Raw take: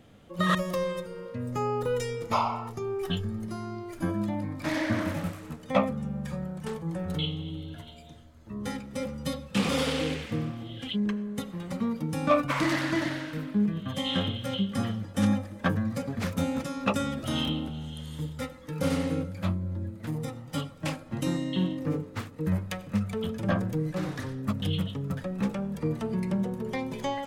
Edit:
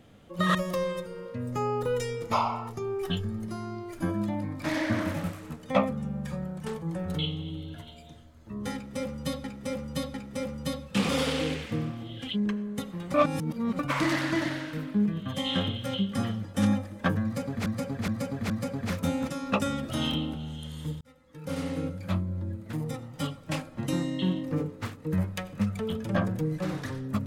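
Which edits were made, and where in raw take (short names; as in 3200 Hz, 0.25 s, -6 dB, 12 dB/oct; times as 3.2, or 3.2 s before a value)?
8.74–9.44 loop, 3 plays
11.74–12.39 reverse
15.84–16.26 loop, 4 plays
18.35–19.4 fade in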